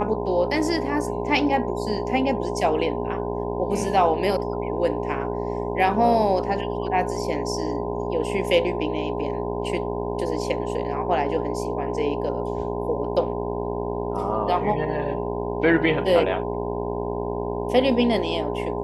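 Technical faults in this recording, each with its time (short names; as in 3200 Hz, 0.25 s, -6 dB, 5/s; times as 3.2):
buzz 60 Hz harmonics 17 -29 dBFS
tone 410 Hz -29 dBFS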